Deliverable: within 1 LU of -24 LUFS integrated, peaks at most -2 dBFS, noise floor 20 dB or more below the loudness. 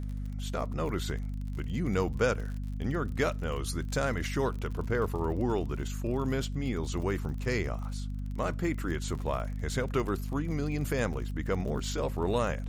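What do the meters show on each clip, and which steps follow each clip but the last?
ticks 47/s; hum 50 Hz; harmonics up to 250 Hz; hum level -33 dBFS; loudness -32.5 LUFS; peak -13.5 dBFS; loudness target -24.0 LUFS
-> de-click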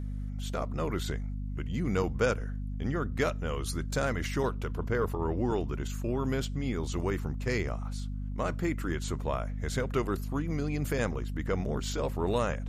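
ticks 0/s; hum 50 Hz; harmonics up to 250 Hz; hum level -33 dBFS
-> notches 50/100/150/200/250 Hz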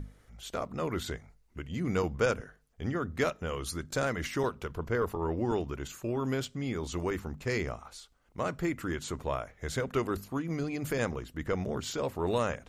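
hum none; loudness -33.5 LUFS; peak -14.0 dBFS; loudness target -24.0 LUFS
-> gain +9.5 dB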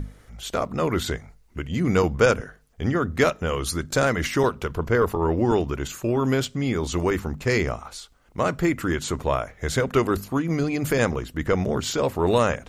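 loudness -24.0 LUFS; peak -4.5 dBFS; noise floor -55 dBFS

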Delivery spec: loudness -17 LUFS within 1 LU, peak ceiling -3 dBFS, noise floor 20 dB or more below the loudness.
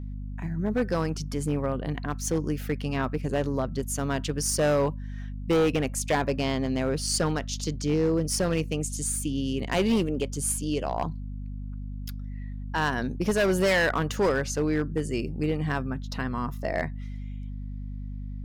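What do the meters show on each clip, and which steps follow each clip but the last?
clipped 1.5%; flat tops at -18.5 dBFS; hum 50 Hz; harmonics up to 250 Hz; hum level -33 dBFS; loudness -27.5 LUFS; peak -18.5 dBFS; loudness target -17.0 LUFS
-> clip repair -18.5 dBFS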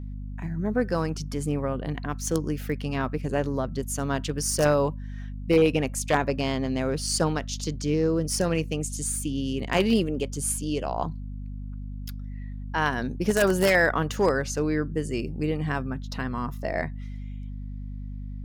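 clipped 0.0%; hum 50 Hz; harmonics up to 250 Hz; hum level -32 dBFS
-> notches 50/100/150/200/250 Hz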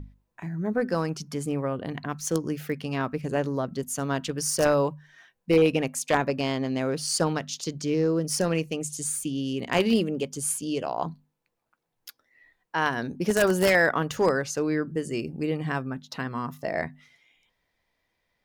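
hum none; loudness -27.0 LUFS; peak -8.5 dBFS; loudness target -17.0 LUFS
-> gain +10 dB; limiter -3 dBFS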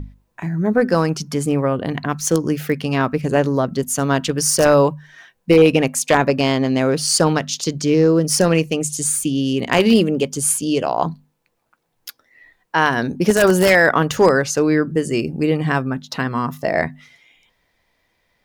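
loudness -17.5 LUFS; peak -3.0 dBFS; noise floor -68 dBFS

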